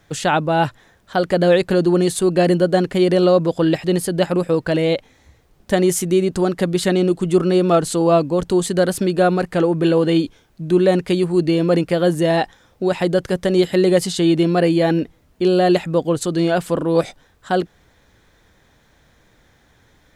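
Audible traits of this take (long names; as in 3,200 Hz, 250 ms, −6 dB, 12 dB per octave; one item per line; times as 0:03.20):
background noise floor −57 dBFS
spectral slope −6.0 dB per octave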